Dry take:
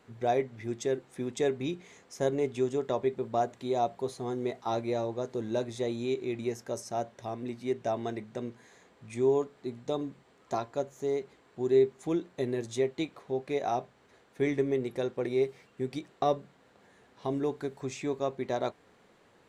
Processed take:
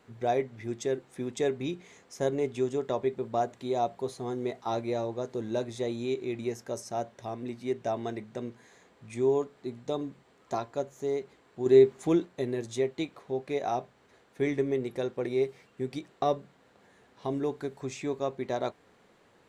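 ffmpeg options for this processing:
ffmpeg -i in.wav -filter_complex "[0:a]asplit=3[link_01][link_02][link_03];[link_01]atrim=end=11.662[link_04];[link_02]atrim=start=11.658:end=12.252,asetpts=PTS-STARTPTS,volume=5dB[link_05];[link_03]atrim=start=12.248[link_06];[link_04][link_05]acrossfade=duration=0.004:curve1=hsin:curve2=hsin[link_07];[link_07][link_06]acrossfade=duration=0.004:curve1=hsin:curve2=hsin" out.wav

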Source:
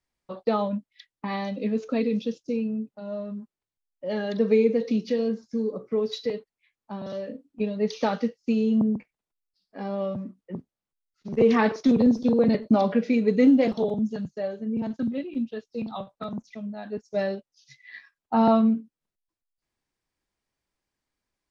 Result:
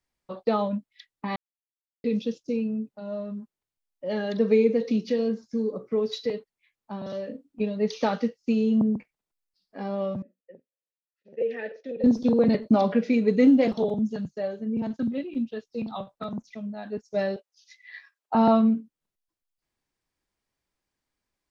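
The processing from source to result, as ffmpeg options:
ffmpeg -i in.wav -filter_complex "[0:a]asettb=1/sr,asplit=3[link_01][link_02][link_03];[link_01]atrim=end=10.224[link_04];[link_02]atrim=start=10.22:end=12.04,asetpts=PTS-STARTPTS,afade=type=in:duration=0.004:curve=qsin,afade=type=out:start_time=1.816:duration=0.004:curve=qsin,asplit=3[link_05][link_06][link_07];[link_05]bandpass=frequency=530:width_type=q:width=8,volume=0dB[link_08];[link_06]bandpass=frequency=1840:width_type=q:width=8,volume=-6dB[link_09];[link_07]bandpass=frequency=2480:width_type=q:width=8,volume=-9dB[link_10];[link_08][link_09][link_10]amix=inputs=3:normalize=0[link_11];[link_03]atrim=start=12.036[link_12];[link_04][link_11]acrossfade=duration=0.004:curve1=hsin:curve2=qsin[link_13];[link_13][link_12]acrossfade=duration=0.004:curve1=qsin:curve2=hsin,asettb=1/sr,asplit=3[link_14][link_15][link_16];[link_14]atrim=end=17.364[link_17];[link_15]atrim=start=17.36:end=18.35,asetpts=PTS-STARTPTS,afade=type=in:duration=0.004:curve=qsin,afade=type=out:start_time=0.986:duration=0.004:curve=qsin,highpass=frequency=420:width=0.5412,highpass=frequency=420:width=1.3066[link_18];[link_16]atrim=start=18.346[link_19];[link_17][link_18]acrossfade=duration=0.004:curve1=hsin:curve2=qsin[link_20];[link_20][link_19]acrossfade=duration=0.004:curve1=qsin:curve2=hsin,asplit=3[link_21][link_22][link_23];[link_21]atrim=end=1.36,asetpts=PTS-STARTPTS,afade=type=out:start_time=1.356:duration=0.004:curve=hsin[link_24];[link_22]atrim=start=1.36:end=2.04,asetpts=PTS-STARTPTS,volume=0[link_25];[link_23]atrim=start=2.04,asetpts=PTS-STARTPTS,afade=type=in:duration=0.004:curve=hsin[link_26];[link_24][link_25][link_26]concat=n=3:v=0:a=1" out.wav

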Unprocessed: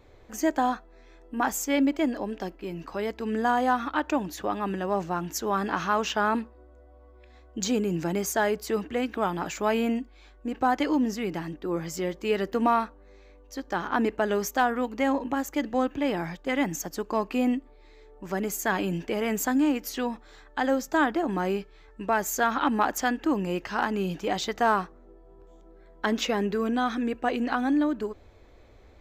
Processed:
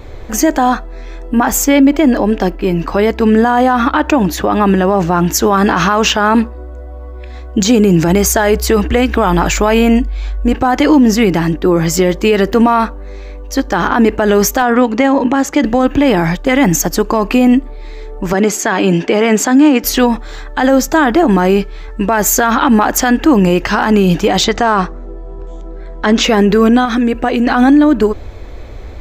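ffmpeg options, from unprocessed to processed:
ffmpeg -i in.wav -filter_complex "[0:a]asettb=1/sr,asplit=3[link_01][link_02][link_03];[link_01]atrim=end=1.374[link_04];[link_02]atrim=start=1.37:end=5.26,asetpts=PTS-STARTPTS,afade=type=in:duration=0.004:curve=qsin,afade=type=out:start_time=3.886:duration=0.004:curve=qsin,equalizer=frequency=7900:width=0.44:gain=-3.5[link_05];[link_03]atrim=start=5.256[link_06];[link_04][link_05]acrossfade=duration=0.004:curve1=hsin:curve2=qsin[link_07];[link_07][link_06]acrossfade=duration=0.004:curve1=qsin:curve2=hsin,asplit=3[link_08][link_09][link_10];[link_08]afade=type=out:start_time=8.07:duration=0.02[link_11];[link_09]asubboost=boost=3:cutoff=100,afade=type=in:start_time=8.07:duration=0.02,afade=type=out:start_time=10.53:duration=0.02[link_12];[link_10]afade=type=in:start_time=10.53:duration=0.02[link_13];[link_11][link_12][link_13]amix=inputs=3:normalize=0,asettb=1/sr,asplit=3[link_14][link_15][link_16];[link_14]atrim=end=14.624[link_17];[link_15]atrim=start=14.62:end=15.64,asetpts=PTS-STARTPTS,afade=type=in:duration=0.004:curve=qsin,afade=type=out:start_time=1.016:duration=0.004:curve=qsin,highpass=110,lowpass=7200[link_18];[link_16]atrim=start=15.636[link_19];[link_17][link_18]acrossfade=duration=0.004:curve1=hsin:curve2=qsin[link_20];[link_20][link_19]acrossfade=duration=0.004:curve1=qsin:curve2=hsin,asettb=1/sr,asplit=3[link_21][link_22][link_23];[link_21]atrim=end=18.334[link_24];[link_22]atrim=start=18.33:end=19.84,asetpts=PTS-STARTPTS,afade=type=in:duration=0.004:curve=qsin,afade=type=out:start_time=1.506:duration=0.004:curve=qsin,highpass=210,lowpass=6300[link_25];[link_23]atrim=start=19.836[link_26];[link_24][link_25]acrossfade=duration=0.004:curve1=hsin:curve2=qsin[link_27];[link_27][link_26]acrossfade=duration=0.004:curve1=qsin:curve2=hsin,asettb=1/sr,asplit=3[link_28][link_29][link_30];[link_28]atrim=end=24.444[link_31];[link_29]atrim=start=24.44:end=26.23,asetpts=PTS-STARTPTS,afade=type=in:duration=0.004:curve=qsin,afade=type=out:start_time=1.786:duration=0.004:curve=qsin,lowpass=frequency=8300:width=0.5412,lowpass=frequency=8300:width=1.3066[link_32];[link_30]atrim=start=26.226[link_33];[link_31][link_32]acrossfade=duration=0.004:curve1=hsin:curve2=qsin[link_34];[link_34][link_33]acrossfade=duration=0.004:curve1=qsin:curve2=hsin,asettb=1/sr,asplit=3[link_35][link_36][link_37];[link_35]atrim=end=26.854[link_38];[link_36]atrim=start=26.85:end=27.47,asetpts=PTS-STARTPTS,afade=type=in:duration=0.004:curve=qsin,afade=type=out:start_time=0.616:duration=0.004:curve=qsin,acompressor=threshold=-33dB:ratio=2.5:attack=3.2:release=140:knee=1:detection=peak[link_39];[link_37]atrim=start=27.466[link_40];[link_38][link_39]acrossfade=duration=0.004:curve1=hsin:curve2=qsin[link_41];[link_41][link_40]acrossfade=duration=0.004:curve1=qsin:curve2=hsin,lowshelf=frequency=100:gain=8,alimiter=level_in=21dB:limit=-1dB:release=50:level=0:latency=1,volume=-1dB" out.wav

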